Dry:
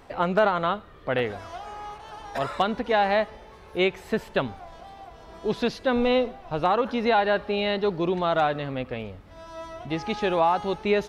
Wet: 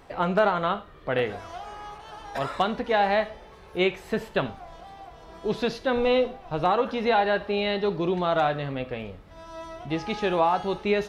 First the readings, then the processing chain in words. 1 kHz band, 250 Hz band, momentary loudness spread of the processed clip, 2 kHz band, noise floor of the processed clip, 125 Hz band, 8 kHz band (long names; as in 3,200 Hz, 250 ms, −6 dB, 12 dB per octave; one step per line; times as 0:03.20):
−0.5 dB, −1.0 dB, 18 LU, −0.5 dB, −49 dBFS, +0.5 dB, can't be measured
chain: reverb whose tail is shaped and stops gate 130 ms falling, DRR 9.5 dB
level −1 dB